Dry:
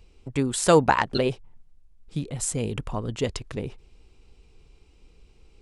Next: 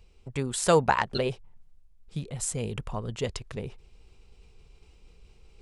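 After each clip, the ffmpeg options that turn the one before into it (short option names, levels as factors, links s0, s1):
-af "areverse,acompressor=mode=upward:threshold=0.00708:ratio=2.5,areverse,equalizer=f=290:t=o:w=0.38:g=-8.5,volume=0.708"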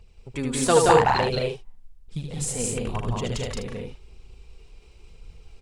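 -af "aphaser=in_gain=1:out_gain=1:delay=4.3:decay=0.48:speed=0.97:type=triangular,aecho=1:1:75.8|174.9|212.8|253.6:0.562|0.794|0.708|0.355"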